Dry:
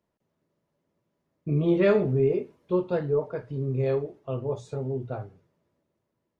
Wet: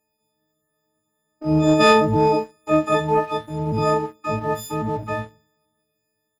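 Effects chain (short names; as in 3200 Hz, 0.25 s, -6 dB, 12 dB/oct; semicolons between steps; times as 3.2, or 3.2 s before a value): frequency quantiser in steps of 6 st; harmoniser -12 st -16 dB, +12 st -2 dB; sample leveller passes 1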